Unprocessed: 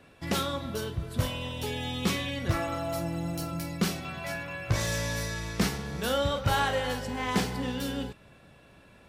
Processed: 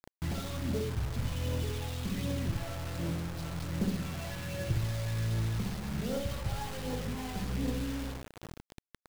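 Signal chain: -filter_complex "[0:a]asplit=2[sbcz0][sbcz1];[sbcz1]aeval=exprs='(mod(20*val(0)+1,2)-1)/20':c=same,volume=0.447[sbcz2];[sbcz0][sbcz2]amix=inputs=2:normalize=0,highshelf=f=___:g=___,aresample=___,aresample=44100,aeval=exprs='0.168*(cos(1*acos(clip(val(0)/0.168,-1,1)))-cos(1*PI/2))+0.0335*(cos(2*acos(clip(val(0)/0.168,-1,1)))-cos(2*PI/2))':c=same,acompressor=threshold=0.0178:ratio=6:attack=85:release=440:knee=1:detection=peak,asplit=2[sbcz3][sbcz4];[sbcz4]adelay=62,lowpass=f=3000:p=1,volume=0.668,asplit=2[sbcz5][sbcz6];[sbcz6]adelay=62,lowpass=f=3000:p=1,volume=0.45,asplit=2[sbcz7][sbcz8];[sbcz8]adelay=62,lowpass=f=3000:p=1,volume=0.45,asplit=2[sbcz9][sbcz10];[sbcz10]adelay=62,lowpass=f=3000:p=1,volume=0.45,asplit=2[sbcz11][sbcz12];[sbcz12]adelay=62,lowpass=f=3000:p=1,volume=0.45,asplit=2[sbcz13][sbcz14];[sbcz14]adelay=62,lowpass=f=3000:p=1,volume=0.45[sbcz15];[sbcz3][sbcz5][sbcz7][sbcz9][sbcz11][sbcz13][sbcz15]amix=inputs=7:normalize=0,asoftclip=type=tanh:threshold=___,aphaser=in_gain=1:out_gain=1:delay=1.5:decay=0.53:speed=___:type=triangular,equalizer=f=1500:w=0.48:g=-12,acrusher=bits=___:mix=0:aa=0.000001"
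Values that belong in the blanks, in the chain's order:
2300, -7, 11025, 0.0501, 1.3, 6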